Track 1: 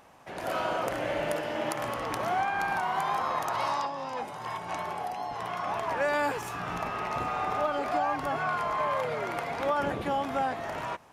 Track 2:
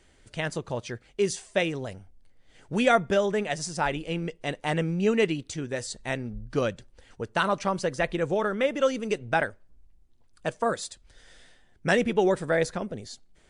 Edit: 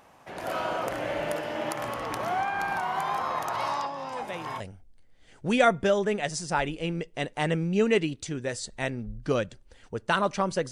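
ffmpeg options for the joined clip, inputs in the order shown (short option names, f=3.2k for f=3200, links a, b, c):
-filter_complex "[1:a]asplit=2[a][b];[0:a]apad=whole_dur=10.71,atrim=end=10.71,atrim=end=4.602[c];[b]atrim=start=1.868:end=7.98[d];[a]atrim=start=1.39:end=1.87,asetpts=PTS-STARTPTS,volume=-12dB,afade=t=in:d=0.004:c=hsin,afade=t=out:st=0.476:d=0.004:c=hsin,adelay=4120[e];[c][d]acrossfade=d=0.004:c1=hsin:c2=hsin[f];[f][e]amix=inputs=2:normalize=0"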